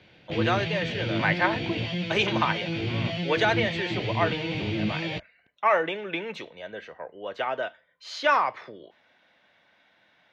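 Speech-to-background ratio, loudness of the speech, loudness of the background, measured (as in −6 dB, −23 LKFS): 2.0 dB, −28.0 LKFS, −30.0 LKFS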